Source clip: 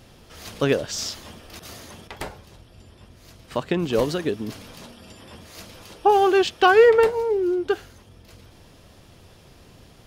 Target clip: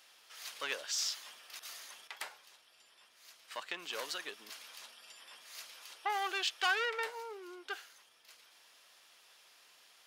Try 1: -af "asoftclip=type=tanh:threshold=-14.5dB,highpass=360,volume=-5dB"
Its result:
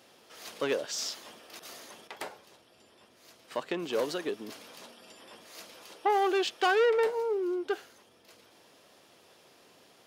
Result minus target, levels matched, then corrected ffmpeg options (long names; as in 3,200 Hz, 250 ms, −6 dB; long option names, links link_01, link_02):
500 Hz band +9.0 dB
-af "asoftclip=type=tanh:threshold=-14.5dB,highpass=1300,volume=-5dB"